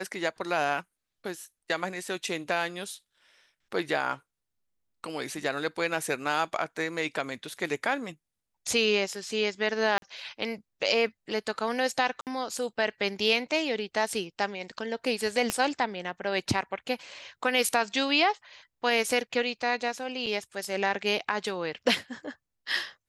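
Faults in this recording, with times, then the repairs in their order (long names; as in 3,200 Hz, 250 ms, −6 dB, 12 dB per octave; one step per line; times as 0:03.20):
0:09.98–0:10.02: drop-out 42 ms
0:12.21–0:12.27: drop-out 58 ms
0:15.50: click −11 dBFS
0:20.26–0:20.27: drop-out 6.9 ms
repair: click removal
repair the gap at 0:09.98, 42 ms
repair the gap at 0:12.21, 58 ms
repair the gap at 0:20.26, 6.9 ms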